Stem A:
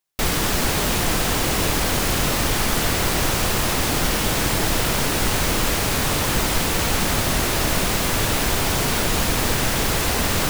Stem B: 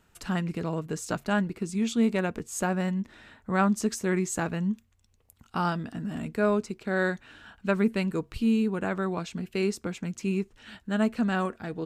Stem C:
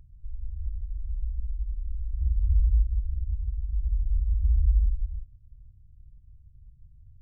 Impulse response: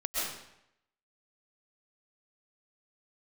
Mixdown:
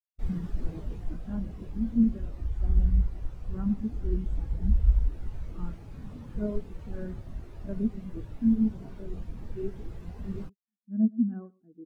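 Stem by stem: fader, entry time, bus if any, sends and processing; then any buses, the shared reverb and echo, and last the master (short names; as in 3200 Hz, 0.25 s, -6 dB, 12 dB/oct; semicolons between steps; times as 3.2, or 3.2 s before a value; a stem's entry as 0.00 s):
-5.0 dB, 0.00 s, no send, no echo send, dry
-6.5 dB, 0.00 s, no send, echo send -10 dB, bell 290 Hz +7 dB 1.1 oct
-4.5 dB, 0.20 s, no send, no echo send, dry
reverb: off
echo: echo 0.114 s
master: vocal rider within 3 dB 2 s; spectral expander 2.5:1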